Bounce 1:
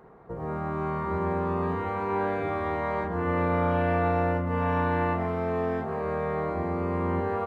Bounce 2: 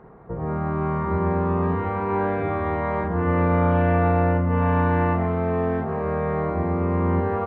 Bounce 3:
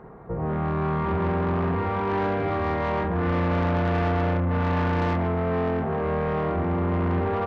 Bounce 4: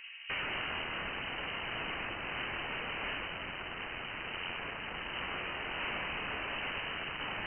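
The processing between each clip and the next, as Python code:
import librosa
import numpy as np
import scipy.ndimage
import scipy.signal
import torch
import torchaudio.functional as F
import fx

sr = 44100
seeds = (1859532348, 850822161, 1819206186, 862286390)

y1 = fx.bass_treble(x, sr, bass_db=5, treble_db=-15)
y1 = y1 * librosa.db_to_amplitude(3.5)
y2 = 10.0 ** (-23.0 / 20.0) * np.tanh(y1 / 10.0 ** (-23.0 / 20.0))
y2 = y2 * librosa.db_to_amplitude(2.5)
y3 = (np.mod(10.0 ** (27.0 / 20.0) * y2 + 1.0, 2.0) - 1.0) / 10.0 ** (27.0 / 20.0)
y3 = fx.freq_invert(y3, sr, carrier_hz=3000)
y3 = y3 * librosa.db_to_amplitude(-4.0)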